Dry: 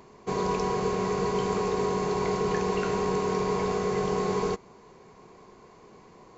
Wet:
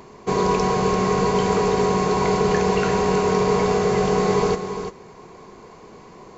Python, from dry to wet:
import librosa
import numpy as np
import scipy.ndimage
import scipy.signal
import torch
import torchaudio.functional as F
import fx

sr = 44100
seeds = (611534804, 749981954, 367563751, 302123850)

y = x + 10.0 ** (-9.0 / 20.0) * np.pad(x, (int(342 * sr / 1000.0), 0))[:len(x)]
y = F.gain(torch.from_numpy(y), 8.0).numpy()